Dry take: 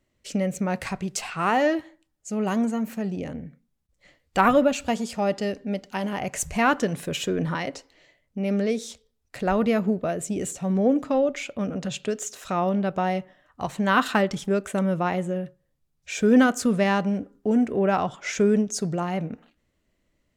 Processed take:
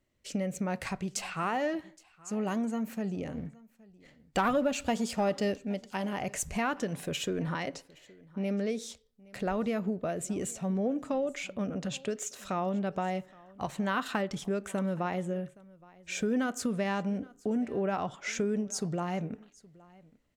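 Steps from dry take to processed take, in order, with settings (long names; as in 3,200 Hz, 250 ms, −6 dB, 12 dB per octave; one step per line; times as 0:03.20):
downward compressor 3 to 1, threshold −24 dBFS, peak gain reduction 9 dB
0:03.37–0:05.56: leveller curve on the samples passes 1
single-tap delay 819 ms −23.5 dB
level −4.5 dB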